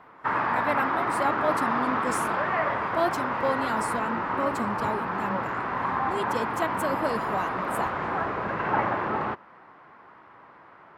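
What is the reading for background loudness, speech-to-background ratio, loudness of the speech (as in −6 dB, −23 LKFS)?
−27.5 LKFS, −4.5 dB, −32.0 LKFS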